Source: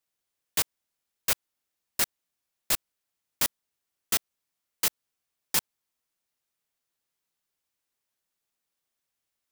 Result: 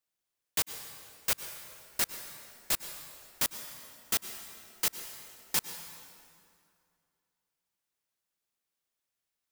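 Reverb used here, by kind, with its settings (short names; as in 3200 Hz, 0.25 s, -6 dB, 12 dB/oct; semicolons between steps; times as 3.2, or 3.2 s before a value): plate-style reverb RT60 2.4 s, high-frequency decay 0.75×, pre-delay 90 ms, DRR 9 dB; gain -3.5 dB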